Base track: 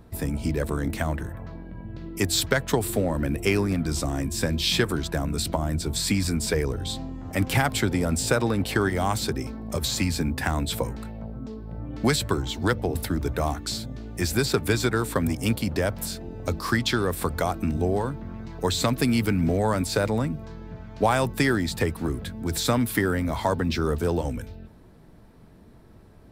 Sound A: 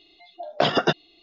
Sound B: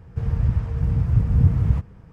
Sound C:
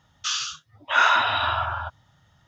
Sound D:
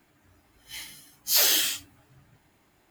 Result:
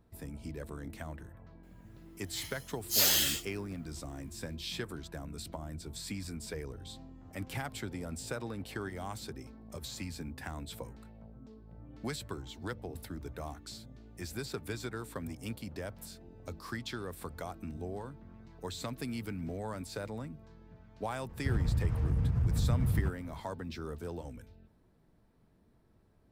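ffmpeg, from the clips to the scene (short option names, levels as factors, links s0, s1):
-filter_complex "[0:a]volume=0.158[s0];[2:a]acompressor=threshold=0.0891:ratio=6:attack=3.2:release=140:knee=1:detection=peak[s1];[4:a]atrim=end=2.9,asetpts=PTS-STARTPTS,volume=0.562,afade=t=in:d=0.004:c=hsin,afade=t=out:st=2.896:d=0.004:c=hsin,adelay=1630[s2];[s1]atrim=end=2.12,asetpts=PTS-STARTPTS,volume=0.631,afade=t=in:d=0.004:c=hsin,afade=t=out:st=2.116:d=0.004:c=hsin,adelay=21290[s3];[s0][s2][s3]amix=inputs=3:normalize=0"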